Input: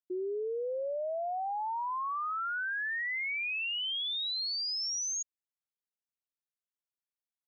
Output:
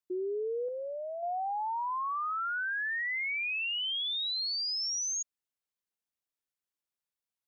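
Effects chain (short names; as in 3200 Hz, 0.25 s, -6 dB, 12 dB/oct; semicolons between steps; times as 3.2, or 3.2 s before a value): 0.68–1.23 dynamic EQ 710 Hz, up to -5 dB, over -47 dBFS, Q 0.83; gain +1 dB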